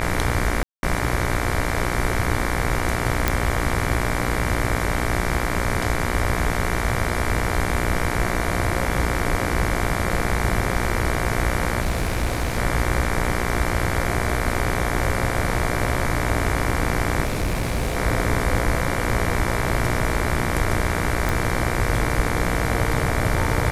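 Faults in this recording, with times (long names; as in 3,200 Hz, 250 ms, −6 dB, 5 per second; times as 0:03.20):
mains buzz 60 Hz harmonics 39 −26 dBFS
0:00.63–0:00.83: drop-out 201 ms
0:03.28: click
0:11.80–0:12.58: clipping −17 dBFS
0:17.24–0:17.97: clipping −18.5 dBFS
0:21.29: click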